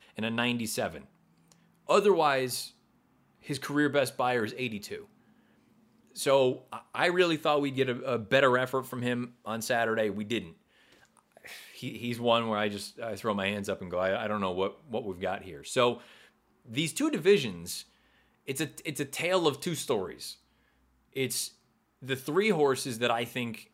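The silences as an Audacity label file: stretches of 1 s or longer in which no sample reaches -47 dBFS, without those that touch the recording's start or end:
5.050000	6.150000	silence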